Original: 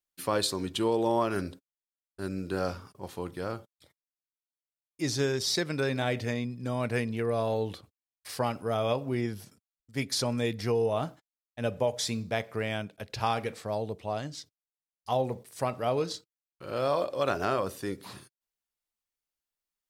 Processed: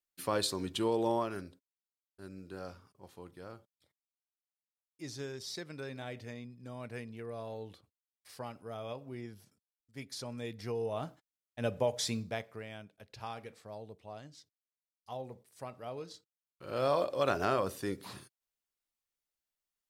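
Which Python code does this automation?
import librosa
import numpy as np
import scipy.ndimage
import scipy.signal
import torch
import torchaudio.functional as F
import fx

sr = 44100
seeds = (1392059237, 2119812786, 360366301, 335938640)

y = fx.gain(x, sr, db=fx.line((1.11, -4.0), (1.51, -13.5), (10.16, -13.5), (11.59, -3.0), (12.16, -3.0), (12.66, -14.0), (16.11, -14.0), (16.84, -2.0)))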